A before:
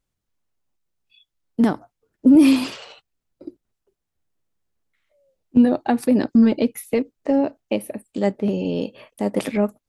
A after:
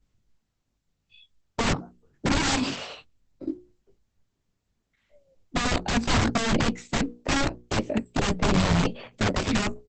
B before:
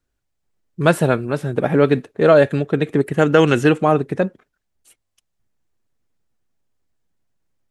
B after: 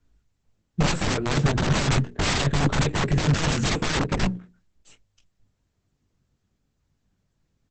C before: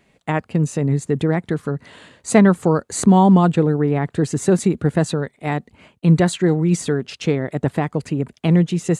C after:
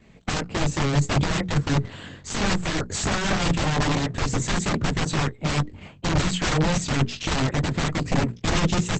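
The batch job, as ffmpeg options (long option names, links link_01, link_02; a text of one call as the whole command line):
ffmpeg -i in.wav -filter_complex "[0:a]asplit=2[link_01][link_02];[link_02]adelay=22,volume=-9dB[link_03];[link_01][link_03]amix=inputs=2:normalize=0,acrossover=split=290|2000[link_04][link_05][link_06];[link_04]volume=21.5dB,asoftclip=hard,volume=-21.5dB[link_07];[link_07][link_05][link_06]amix=inputs=3:normalize=0,alimiter=limit=-9dB:level=0:latency=1:release=143,asplit=2[link_08][link_09];[link_09]acompressor=threshold=-28dB:ratio=8,volume=-1.5dB[link_10];[link_08][link_10]amix=inputs=2:normalize=0,flanger=delay=17.5:depth=3.9:speed=0.23,aeval=exprs='(mod(8.91*val(0)+1,2)-1)/8.91':channel_layout=same,bass=frequency=250:gain=11,treble=frequency=4000:gain=-1,bandreject=frequency=60:width_type=h:width=6,bandreject=frequency=120:width_type=h:width=6,bandreject=frequency=180:width_type=h:width=6,bandreject=frequency=240:width_type=h:width=6,bandreject=frequency=300:width_type=h:width=6,bandreject=frequency=360:width_type=h:width=6,bandreject=frequency=420:width_type=h:width=6,bandreject=frequency=480:width_type=h:width=6" -ar 48000 -c:a libopus -b:a 10k out.opus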